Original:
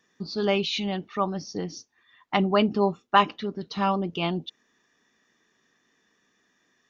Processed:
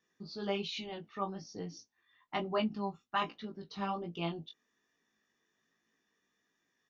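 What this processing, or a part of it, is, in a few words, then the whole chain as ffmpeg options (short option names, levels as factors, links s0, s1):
double-tracked vocal: -filter_complex "[0:a]asettb=1/sr,asplit=3[s0][s1][s2];[s0]atrim=end=2.584[s3];[s1]atrim=start=2.58:end=3.22,asetpts=PTS-STARTPTS,afade=t=in:d=0.004:c=qsin,afade=t=out:st=0.636:d=0.004:c=qsin,equalizer=f=450:w=1.5:g=-11[s4];[s2]atrim=start=3.216[s5];[s3][s4]acrossfade=d=0.004:c1=hsin:c2=qsin[s6];[s6][s5]acrossfade=d=0.004:c1=qsin:c2=hsin,asplit=2[s7][s8];[s8]adelay=18,volume=0.251[s9];[s7][s9]amix=inputs=2:normalize=0,flanger=delay=17.5:depth=3:speed=1.2,volume=0.376"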